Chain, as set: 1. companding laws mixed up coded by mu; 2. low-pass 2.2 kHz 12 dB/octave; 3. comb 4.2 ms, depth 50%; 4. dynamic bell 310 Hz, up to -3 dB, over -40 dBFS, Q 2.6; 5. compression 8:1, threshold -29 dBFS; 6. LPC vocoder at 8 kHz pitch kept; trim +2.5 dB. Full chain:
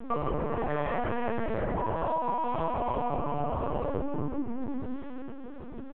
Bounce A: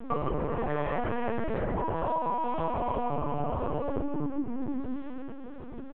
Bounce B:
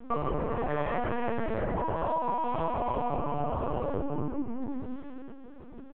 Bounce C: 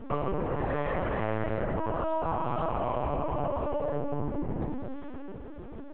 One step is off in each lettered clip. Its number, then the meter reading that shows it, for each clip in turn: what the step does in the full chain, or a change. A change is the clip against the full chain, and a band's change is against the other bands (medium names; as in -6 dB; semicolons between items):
4, momentary loudness spread change -1 LU; 1, distortion -26 dB; 3, 1 kHz band -2.5 dB